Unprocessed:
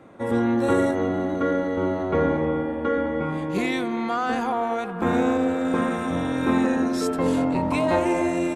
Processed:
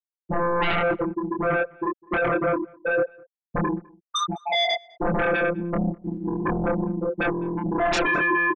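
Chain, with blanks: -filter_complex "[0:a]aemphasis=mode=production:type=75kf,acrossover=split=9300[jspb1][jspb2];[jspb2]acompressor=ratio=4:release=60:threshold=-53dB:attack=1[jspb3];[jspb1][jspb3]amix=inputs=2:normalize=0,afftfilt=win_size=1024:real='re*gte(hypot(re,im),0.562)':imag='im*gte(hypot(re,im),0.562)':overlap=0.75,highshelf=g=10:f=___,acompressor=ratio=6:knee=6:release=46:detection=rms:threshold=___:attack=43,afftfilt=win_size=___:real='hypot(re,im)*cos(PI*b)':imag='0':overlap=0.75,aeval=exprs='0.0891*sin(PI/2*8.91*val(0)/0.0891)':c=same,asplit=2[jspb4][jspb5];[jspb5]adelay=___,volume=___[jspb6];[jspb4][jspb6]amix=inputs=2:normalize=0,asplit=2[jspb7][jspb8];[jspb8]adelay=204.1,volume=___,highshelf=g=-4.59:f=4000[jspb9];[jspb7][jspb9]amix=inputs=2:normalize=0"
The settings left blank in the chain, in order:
9400, -32dB, 1024, 25, -3dB, -26dB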